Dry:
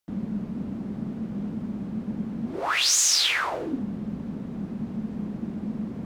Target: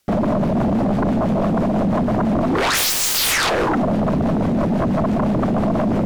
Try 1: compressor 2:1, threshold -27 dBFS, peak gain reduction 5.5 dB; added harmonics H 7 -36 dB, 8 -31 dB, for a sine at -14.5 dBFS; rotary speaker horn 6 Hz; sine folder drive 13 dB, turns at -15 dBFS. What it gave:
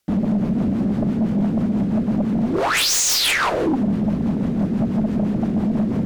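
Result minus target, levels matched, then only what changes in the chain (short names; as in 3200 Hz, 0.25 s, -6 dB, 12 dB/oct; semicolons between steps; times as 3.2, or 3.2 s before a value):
sine folder: distortion -12 dB
change: sine folder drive 20 dB, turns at -15 dBFS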